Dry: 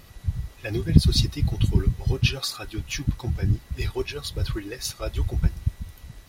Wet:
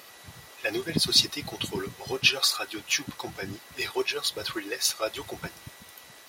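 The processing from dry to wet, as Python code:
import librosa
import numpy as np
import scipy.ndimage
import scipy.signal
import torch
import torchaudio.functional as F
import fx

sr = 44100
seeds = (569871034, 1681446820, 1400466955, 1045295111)

y = scipy.signal.sosfilt(scipy.signal.butter(2, 490.0, 'highpass', fs=sr, output='sos'), x)
y = y * 10.0 ** (5.5 / 20.0)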